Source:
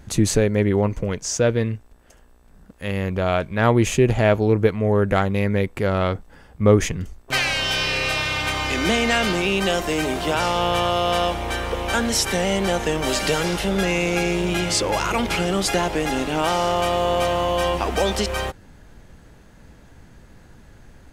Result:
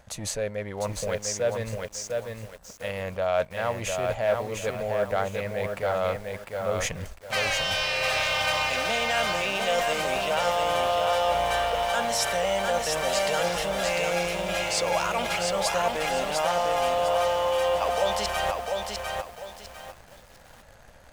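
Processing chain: waveshaping leveller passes 1; reverse; compression 10:1, threshold -24 dBFS, peak gain reduction 16.5 dB; reverse; resonant low shelf 450 Hz -7.5 dB, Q 3; bit-crushed delay 701 ms, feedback 35%, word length 8-bit, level -3.5 dB

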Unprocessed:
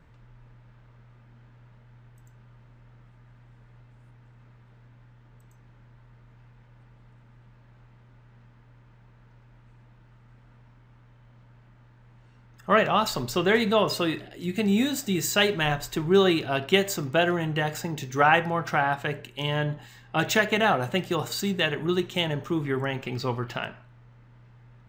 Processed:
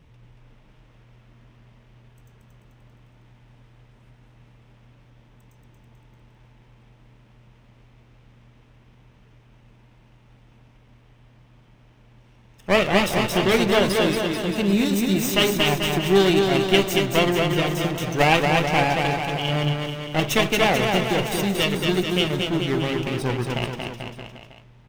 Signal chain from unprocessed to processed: comb filter that takes the minimum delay 0.34 ms; bouncing-ball echo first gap 230 ms, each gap 0.9×, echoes 5; trim +3 dB

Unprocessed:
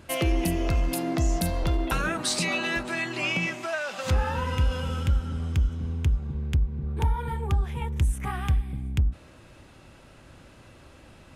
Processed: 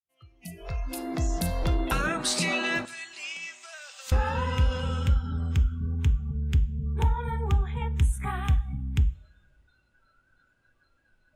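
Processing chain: fade-in on the opening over 1.76 s; spectral noise reduction 24 dB; 2.85–4.12 s: differentiator; two-slope reverb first 0.49 s, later 2 s, from -19 dB, DRR 14.5 dB

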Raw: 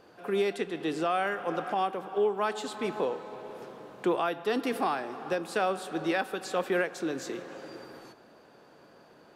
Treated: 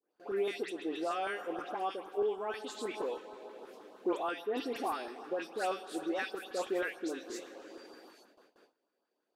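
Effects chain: high-pass 260 Hz 24 dB/octave; phase dispersion highs, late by 132 ms, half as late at 2.3 kHz; LFO notch saw up 6.3 Hz 510–2500 Hz; gate with hold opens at -45 dBFS; on a send: reverberation RT60 0.55 s, pre-delay 3 ms, DRR 22.5 dB; on the sum: trim -4.5 dB

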